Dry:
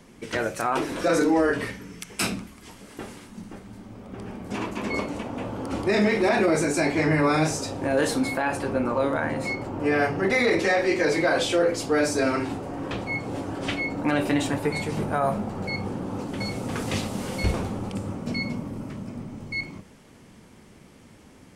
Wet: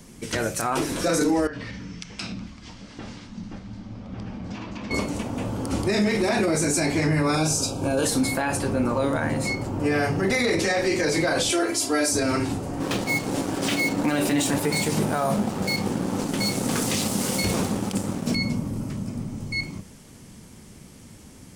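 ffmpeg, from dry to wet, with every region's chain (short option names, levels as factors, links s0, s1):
-filter_complex "[0:a]asettb=1/sr,asplit=3[s0][s1][s2];[s0]atrim=end=1.474[s3];[s1]atrim=start=1.47:end=4.91,asetpts=PTS-STARTPTS,afade=t=in:d=0.004:c=qsin,afade=t=out:st=3.436:d=0.004:c=qsin,lowpass=f=5200:w=0.5412,lowpass=f=5200:w=1.3066,equalizer=f=400:w=6.9:g=-10,acompressor=threshold=0.02:ratio=5:attack=3.2:release=140:knee=1:detection=peak[s4];[s2]atrim=start=4.906[s5];[s3][s4]acrossfade=d=0.004:c1=hsin:c2=qsin[s6];[s6][s5]acrossfade=d=0.004:c1=qsin:c2=hsin,asettb=1/sr,asplit=3[s7][s8][s9];[s7]atrim=end=7.354[s10];[s8]atrim=start=7.35:end=8.05,asetpts=PTS-STARTPTS,afade=t=in:d=0.004:c=qsin,afade=t=out:st=0.696:d=0.004:c=qsin,asuperstop=centerf=1900:order=8:qfactor=3.4,bandreject=f=50:t=h:w=6,bandreject=f=100:t=h:w=6,bandreject=f=150:t=h:w=6,bandreject=f=200:t=h:w=6,bandreject=f=250:t=h:w=6,bandreject=f=300:t=h:w=6,bandreject=f=350:t=h:w=6[s11];[s9]atrim=start=8.046[s12];[s10][s11]acrossfade=d=0.004:c1=hsin:c2=qsin[s13];[s13][s12]acrossfade=d=0.004:c1=qsin:c2=hsin,asettb=1/sr,asplit=3[s14][s15][s16];[s14]atrim=end=11.504[s17];[s15]atrim=start=11.5:end=12.12,asetpts=PTS-STARTPTS,afade=t=in:d=0.004:c=qsin,afade=t=out:st=0.616:d=0.004:c=qsin,highpass=f=380:p=1,equalizer=f=10000:t=o:w=0.2:g=5,aecho=1:1:3:0.89,atrim=end_sample=27342[s18];[s16]atrim=start=12.116[s19];[s17][s18]acrossfade=d=0.004:c1=hsin:c2=qsin[s20];[s20][s19]acrossfade=d=0.004:c1=qsin:c2=hsin,asettb=1/sr,asplit=3[s21][s22][s23];[s21]atrim=end=12.804[s24];[s22]atrim=start=12.8:end=18.35,asetpts=PTS-STARTPTS,afade=t=in:d=0.004:c=qsin,afade=t=out:st=5.546:d=0.004:c=qsin,highpass=180,aeval=exprs='sgn(val(0))*max(abs(val(0))-0.00794,0)':c=same,acontrast=51[s25];[s23]atrim=start=18.346[s26];[s24][s25]acrossfade=d=0.004:c1=hsin:c2=qsin[s27];[s27][s26]acrossfade=d=0.004:c1=qsin:c2=hsin,bass=f=250:g=7,treble=f=4000:g=11,alimiter=limit=0.2:level=0:latency=1:release=33"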